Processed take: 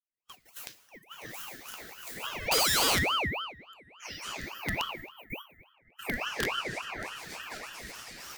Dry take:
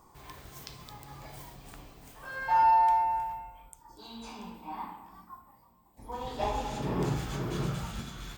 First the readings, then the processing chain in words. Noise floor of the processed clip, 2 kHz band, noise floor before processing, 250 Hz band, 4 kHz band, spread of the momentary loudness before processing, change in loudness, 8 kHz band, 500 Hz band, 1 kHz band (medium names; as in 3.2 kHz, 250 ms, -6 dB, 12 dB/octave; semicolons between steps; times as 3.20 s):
-66 dBFS, +9.5 dB, -60 dBFS, -3.0 dB, +15.0 dB, 24 LU, -1.5 dB, no reading, +1.0 dB, -9.5 dB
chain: recorder AGC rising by 7.5 dB/s; gate -43 dBFS, range -26 dB; spectral noise reduction 21 dB; band-stop 6.8 kHz, Q 9; dynamic bell 1.3 kHz, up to +4 dB, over -38 dBFS, Q 1.2; in parallel at -2 dB: compression 12:1, threshold -31 dBFS, peak gain reduction 14 dB; on the sum: static phaser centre 410 Hz, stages 6; integer overflow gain 18.5 dB; brick-wall FIR high-pass 310 Hz; on a send: tape echo 273 ms, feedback 75%, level -21 dB, low-pass 1.5 kHz; on the sum: gated-style reverb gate 320 ms falling, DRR 12 dB; ring modulator with a swept carrier 1.6 kHz, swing 40%, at 3.5 Hz